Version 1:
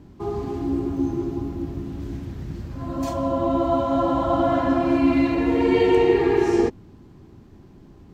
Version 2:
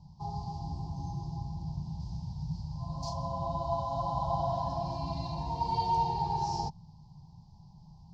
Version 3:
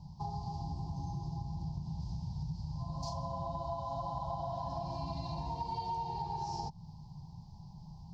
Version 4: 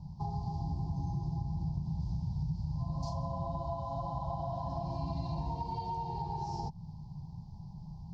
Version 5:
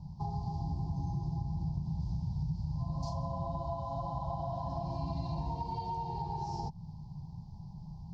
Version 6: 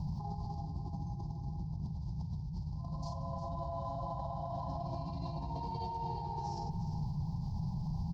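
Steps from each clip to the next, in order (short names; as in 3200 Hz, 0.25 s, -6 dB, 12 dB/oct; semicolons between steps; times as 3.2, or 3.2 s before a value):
EQ curve 110 Hz 0 dB, 160 Hz +9 dB, 280 Hz -25 dB, 480 Hz -21 dB, 910 Hz +10 dB, 1300 Hz -26 dB, 2000 Hz -28 dB, 3300 Hz -9 dB, 4900 Hz +12 dB, 10000 Hz -19 dB; gain -6.5 dB
compressor, threshold -39 dBFS, peak gain reduction 13.5 dB; gain +3.5 dB
tilt shelf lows +4.5 dB, about 780 Hz
nothing audible
negative-ratio compressor -43 dBFS, ratio -1; limiter -36 dBFS, peak gain reduction 7 dB; echo 0.355 s -10.5 dB; gain +5.5 dB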